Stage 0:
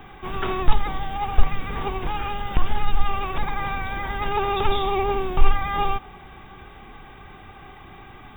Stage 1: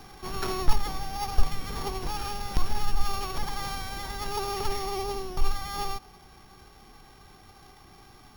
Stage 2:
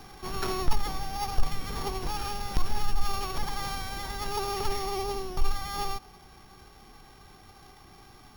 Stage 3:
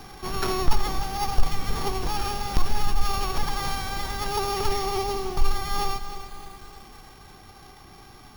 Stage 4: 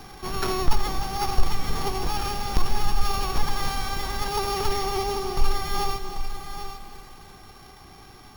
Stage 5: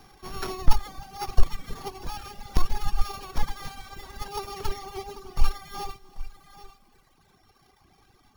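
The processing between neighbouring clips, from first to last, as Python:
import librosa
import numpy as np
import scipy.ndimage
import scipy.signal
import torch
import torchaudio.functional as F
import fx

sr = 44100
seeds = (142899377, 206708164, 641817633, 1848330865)

y1 = np.r_[np.sort(x[:len(x) // 8 * 8].reshape(-1, 8), axis=1).ravel(), x[len(x) // 8 * 8:]]
y1 = fx.rider(y1, sr, range_db=4, speed_s=2.0)
y1 = y1 * librosa.db_to_amplitude(-7.0)
y2 = 10.0 ** (-11.0 / 20.0) * np.tanh(y1 / 10.0 ** (-11.0 / 20.0))
y3 = fx.echo_crushed(y2, sr, ms=304, feedback_pct=55, bits=8, wet_db=-11.0)
y3 = y3 * librosa.db_to_amplitude(4.5)
y4 = y3 + 10.0 ** (-9.5 / 20.0) * np.pad(y3, (int(790 * sr / 1000.0), 0))[:len(y3)]
y5 = fx.dereverb_blind(y4, sr, rt60_s=2.0)
y5 = fx.upward_expand(y5, sr, threshold_db=-34.0, expansion=1.5)
y5 = y5 * librosa.db_to_amplitude(3.5)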